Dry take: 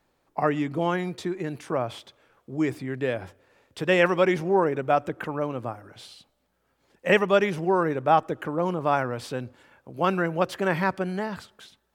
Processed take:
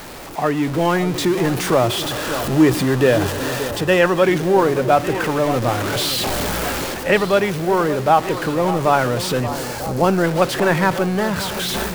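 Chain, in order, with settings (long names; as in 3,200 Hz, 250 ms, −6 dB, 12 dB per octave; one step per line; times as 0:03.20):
converter with a step at zero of −28.5 dBFS
0:01.86–0:04.24: notch filter 2,200 Hz, Q 8.8
0:09.40–0:10.23: gain on a spectral selection 940–4,000 Hz −7 dB
automatic gain control gain up to 13.5 dB
delay that swaps between a low-pass and a high-pass 577 ms, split 1,300 Hz, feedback 74%, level −11.5 dB
level −1 dB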